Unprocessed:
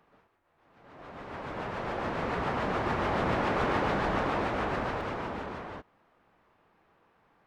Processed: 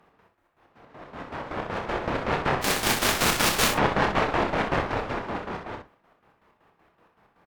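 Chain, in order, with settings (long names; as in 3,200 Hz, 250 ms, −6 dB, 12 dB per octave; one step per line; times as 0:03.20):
0:02.61–0:03.71: spectral envelope flattened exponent 0.3
square-wave tremolo 5.3 Hz, depth 65%, duty 50%
harmonic generator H 4 −10 dB, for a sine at −15 dBFS
on a send: ambience of single reflections 29 ms −6.5 dB, 63 ms −7 dB
on the sum: level +5 dB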